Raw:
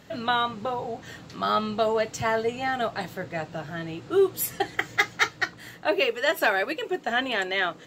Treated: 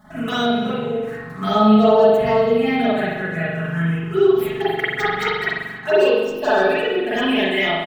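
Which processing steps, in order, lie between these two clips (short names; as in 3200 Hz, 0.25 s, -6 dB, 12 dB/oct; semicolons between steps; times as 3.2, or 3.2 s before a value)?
median filter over 9 samples; envelope phaser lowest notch 440 Hz, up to 2200 Hz, full sweep at -20 dBFS; comb 4.7 ms, depth 98%; in parallel at -2 dB: limiter -20.5 dBFS, peak gain reduction 12.5 dB; on the sum: spectral delete 6.1–6.39, 400–5000 Hz; on a send: echo 0.278 s -18 dB; on the sum: spring tank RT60 1 s, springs 42 ms, chirp 25 ms, DRR -9.5 dB; gain -5 dB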